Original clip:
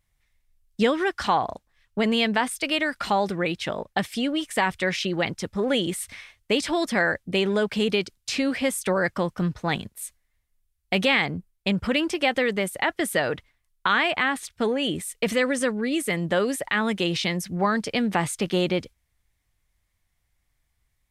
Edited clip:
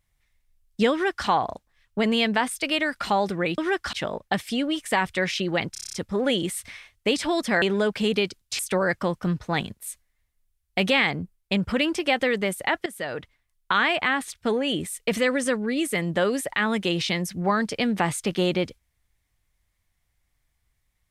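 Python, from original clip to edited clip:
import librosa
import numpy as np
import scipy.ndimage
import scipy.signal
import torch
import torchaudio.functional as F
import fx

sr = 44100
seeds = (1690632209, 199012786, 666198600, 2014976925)

y = fx.edit(x, sr, fx.duplicate(start_s=0.92, length_s=0.35, to_s=3.58),
    fx.stutter(start_s=5.37, slice_s=0.03, count=8),
    fx.cut(start_s=7.06, length_s=0.32),
    fx.cut(start_s=8.35, length_s=0.39),
    fx.fade_in_from(start_s=13.01, length_s=1.04, curve='qsin', floor_db=-14.5), tone=tone)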